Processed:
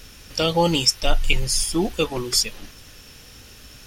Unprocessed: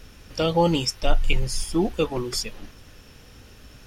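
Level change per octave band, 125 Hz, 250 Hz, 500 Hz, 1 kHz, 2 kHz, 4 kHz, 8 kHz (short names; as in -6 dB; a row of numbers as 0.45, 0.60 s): 0.0, 0.0, +0.5, +1.5, +5.0, +7.5, +9.0 dB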